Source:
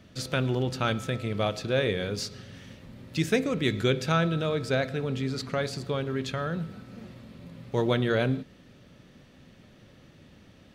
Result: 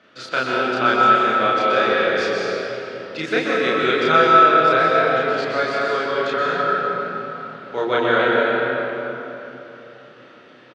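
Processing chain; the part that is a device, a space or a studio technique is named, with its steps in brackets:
station announcement (band-pass filter 420–3,700 Hz; parametric band 1,400 Hz +8.5 dB 0.41 octaves; loudspeakers that aren't time-aligned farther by 11 metres 0 dB, 43 metres −11 dB; convolution reverb RT60 3.4 s, pre-delay 118 ms, DRR −3.5 dB)
level +3 dB

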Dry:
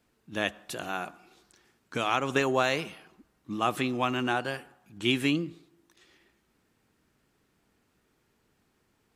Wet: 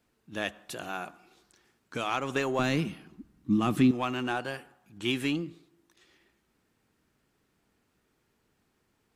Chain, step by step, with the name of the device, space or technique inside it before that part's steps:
parallel distortion (in parallel at −8 dB: hard clipping −27 dBFS, distortion −6 dB)
0:02.59–0:03.91: on the sum: low shelf with overshoot 370 Hz +11 dB, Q 1.5
level −5 dB

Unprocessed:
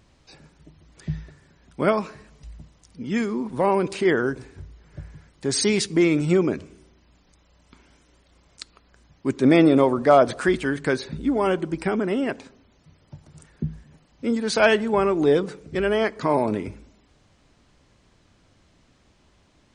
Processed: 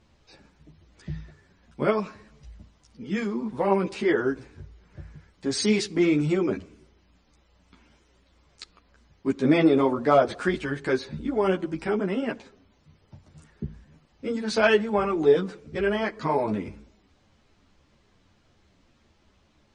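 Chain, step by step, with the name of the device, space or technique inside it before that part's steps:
string-machine ensemble chorus (string-ensemble chorus; low-pass filter 6,600 Hz 12 dB per octave)

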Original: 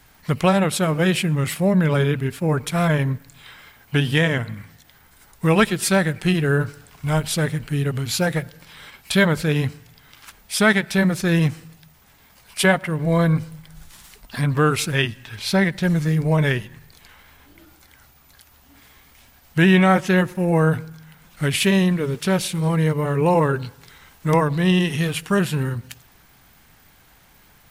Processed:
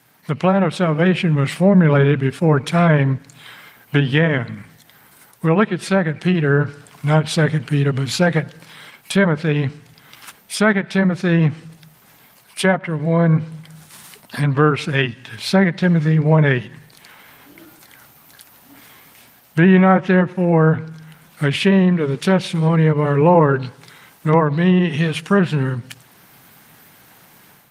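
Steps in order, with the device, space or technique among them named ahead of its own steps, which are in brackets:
0:12.68–0:13.42: notch filter 1,200 Hz, Q 19
treble cut that deepens with the level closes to 1,700 Hz, closed at −13 dBFS
video call (high-pass filter 120 Hz 24 dB per octave; automatic gain control gain up to 8 dB; Opus 32 kbit/s 48,000 Hz)

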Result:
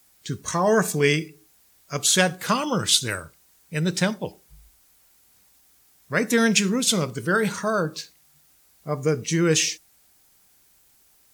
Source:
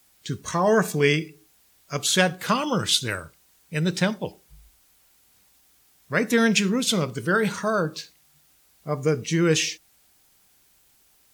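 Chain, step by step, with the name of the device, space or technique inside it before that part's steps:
exciter from parts (in parallel at −12 dB: high-pass filter 2,800 Hz 24 dB per octave + soft clipping −27 dBFS, distortion −6 dB)
on the sum: dynamic equaliser 8,300 Hz, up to +5 dB, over −38 dBFS, Q 0.72

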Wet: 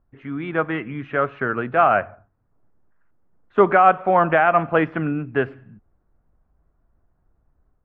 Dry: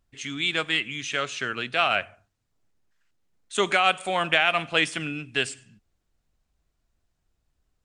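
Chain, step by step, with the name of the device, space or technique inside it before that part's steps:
action camera in a waterproof case (low-pass filter 1,400 Hz 24 dB per octave; automatic gain control gain up to 4 dB; level +6 dB; AAC 64 kbit/s 44,100 Hz)

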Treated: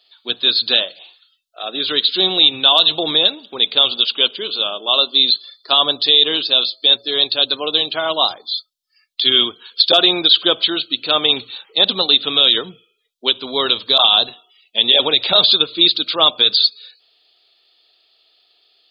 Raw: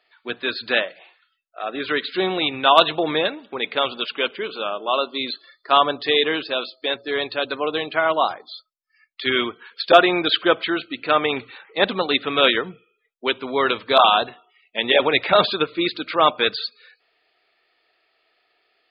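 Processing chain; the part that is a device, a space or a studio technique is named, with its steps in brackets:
over-bright horn tweeter (high shelf with overshoot 2,700 Hz +9.5 dB, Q 3; brickwall limiter −1.5 dBFS, peak gain reduction 10 dB)

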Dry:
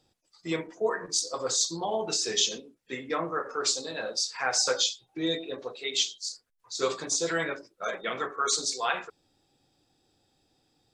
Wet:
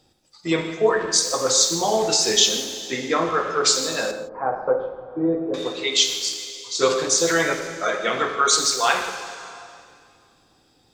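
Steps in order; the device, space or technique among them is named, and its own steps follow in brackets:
saturated reverb return (on a send at −5.5 dB: convolution reverb RT60 2.2 s, pre-delay 49 ms + soft clipping −30 dBFS, distortion −10 dB)
0:04.11–0:05.54: on the sum: low-pass filter 1,000 Hz 24 dB per octave
reverb whose tail is shaped and stops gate 190 ms flat, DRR 9.5 dB
level +8.5 dB

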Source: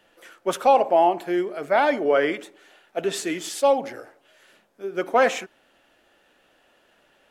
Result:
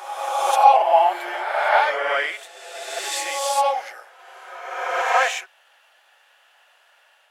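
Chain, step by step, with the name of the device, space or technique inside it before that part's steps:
ghost voice (reversed playback; convolution reverb RT60 1.7 s, pre-delay 15 ms, DRR −2.5 dB; reversed playback; high-pass filter 710 Hz 24 dB per octave)
level +1.5 dB

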